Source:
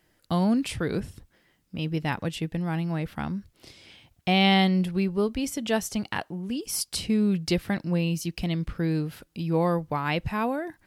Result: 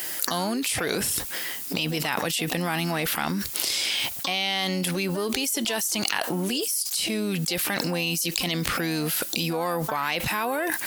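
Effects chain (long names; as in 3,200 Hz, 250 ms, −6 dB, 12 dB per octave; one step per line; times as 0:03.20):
RIAA equalisation recording
pitch-shifted copies added +7 semitones −13 dB
low-shelf EQ 270 Hz −5.5 dB
envelope flattener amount 100%
level −11.5 dB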